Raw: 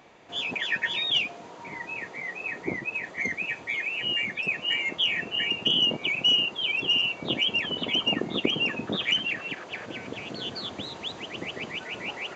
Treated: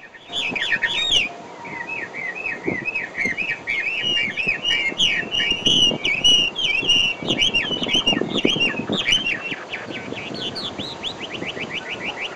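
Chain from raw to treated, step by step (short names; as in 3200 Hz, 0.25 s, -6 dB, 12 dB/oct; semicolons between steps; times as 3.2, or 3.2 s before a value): tracing distortion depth 0.027 ms; reverse echo 0.69 s -22.5 dB; gain +7 dB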